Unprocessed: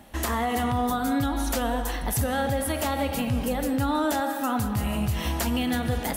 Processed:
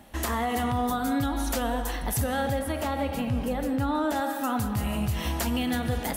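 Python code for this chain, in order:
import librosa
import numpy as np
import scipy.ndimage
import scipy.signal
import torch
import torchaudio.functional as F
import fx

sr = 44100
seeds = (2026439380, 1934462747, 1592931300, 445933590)

y = fx.high_shelf(x, sr, hz=3400.0, db=-8.0, at=(2.59, 4.16))
y = y * librosa.db_to_amplitude(-1.5)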